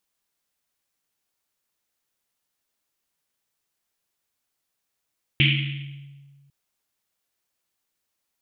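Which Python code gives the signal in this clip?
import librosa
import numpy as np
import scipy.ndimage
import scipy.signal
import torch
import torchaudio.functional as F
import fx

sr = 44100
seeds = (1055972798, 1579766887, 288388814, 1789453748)

y = fx.risset_drum(sr, seeds[0], length_s=1.1, hz=140.0, decay_s=1.8, noise_hz=2700.0, noise_width_hz=1200.0, noise_pct=45)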